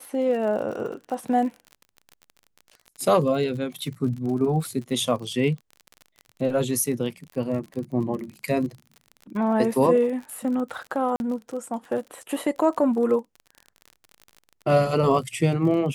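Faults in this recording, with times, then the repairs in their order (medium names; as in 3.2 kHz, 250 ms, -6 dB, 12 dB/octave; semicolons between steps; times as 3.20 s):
crackle 43 per s -33 dBFS
11.16–11.20 s: dropout 41 ms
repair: de-click; interpolate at 11.16 s, 41 ms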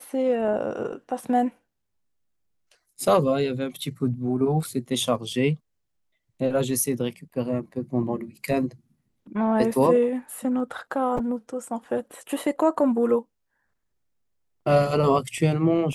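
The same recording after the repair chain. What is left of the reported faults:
nothing left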